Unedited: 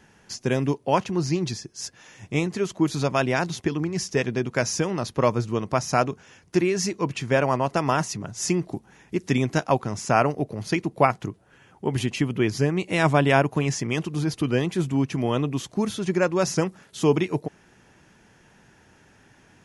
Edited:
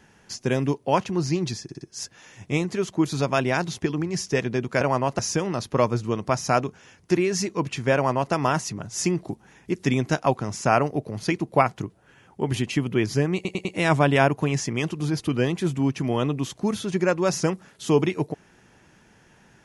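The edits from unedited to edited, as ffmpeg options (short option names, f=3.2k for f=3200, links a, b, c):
-filter_complex "[0:a]asplit=9[a][b][c][d][e][f][g][h][i];[a]atrim=end=1.692[j];[b]atrim=start=1.628:end=1.692[k];[c]atrim=start=1.628:end=1.692[l];[d]atrim=start=1.628:end=4.632[m];[e]atrim=start=7.388:end=7.772[n];[f]atrim=start=4.628:end=12.892[o];[g]atrim=start=12.788:end=12.892[p];[h]atrim=start=12.788:end=12.892[q];[i]atrim=start=12.788[r];[j][k]acrossfade=d=0.004:c1=hsin:c2=hsin[s];[s][l]acrossfade=d=0.004:c1=hsin:c2=hsin[t];[t][m]acrossfade=d=0.004:c1=hsin:c2=hsin[u];[u][n]acrossfade=d=0.004:c1=hsin:c2=hsin[v];[v][o]acrossfade=d=0.004:c1=hsin:c2=hsin[w];[w][p]acrossfade=d=0.004:c1=hsin:c2=hsin[x];[x][q]acrossfade=d=0.004:c1=hsin:c2=hsin[y];[y][r]acrossfade=d=0.004:c1=hsin:c2=hsin"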